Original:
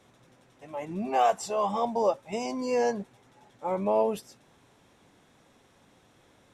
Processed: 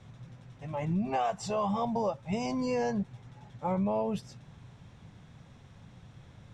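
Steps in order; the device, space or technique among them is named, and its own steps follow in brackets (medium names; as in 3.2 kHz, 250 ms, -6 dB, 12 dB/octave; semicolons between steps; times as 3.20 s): jukebox (low-pass 6.3 kHz 12 dB/octave; resonant low shelf 210 Hz +13 dB, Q 1.5; compression 4:1, threshold -29 dBFS, peak gain reduction 8.5 dB); trim +1.5 dB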